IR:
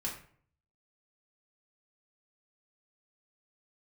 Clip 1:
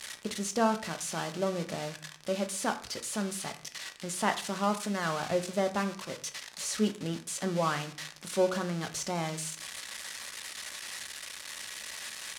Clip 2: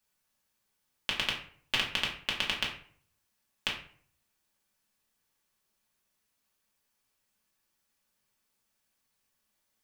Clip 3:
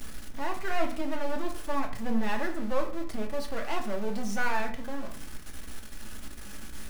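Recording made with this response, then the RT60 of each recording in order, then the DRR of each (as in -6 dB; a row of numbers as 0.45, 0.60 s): 2; 0.55, 0.50, 0.55 s; 6.5, -4.0, 2.0 dB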